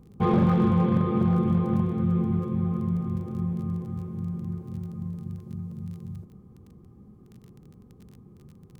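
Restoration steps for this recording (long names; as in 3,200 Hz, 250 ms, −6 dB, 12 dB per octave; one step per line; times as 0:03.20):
clipped peaks rebuilt −15.5 dBFS
click removal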